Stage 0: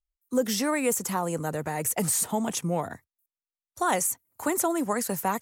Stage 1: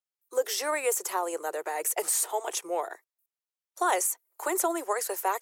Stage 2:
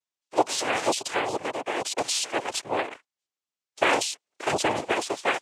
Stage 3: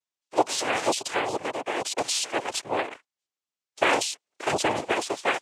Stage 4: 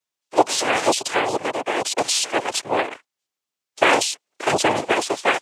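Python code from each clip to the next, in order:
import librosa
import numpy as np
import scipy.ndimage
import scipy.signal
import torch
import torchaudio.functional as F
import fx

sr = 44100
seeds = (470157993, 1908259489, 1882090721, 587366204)

y1 = scipy.signal.sosfilt(scipy.signal.ellip(4, 1.0, 40, 360.0, 'highpass', fs=sr, output='sos'), x)
y2 = fx.noise_vocoder(y1, sr, seeds[0], bands=4)
y2 = F.gain(torch.from_numpy(y2), 3.5).numpy()
y3 = y2
y4 = scipy.signal.sosfilt(scipy.signal.butter(2, 79.0, 'highpass', fs=sr, output='sos'), y3)
y4 = F.gain(torch.from_numpy(y4), 6.0).numpy()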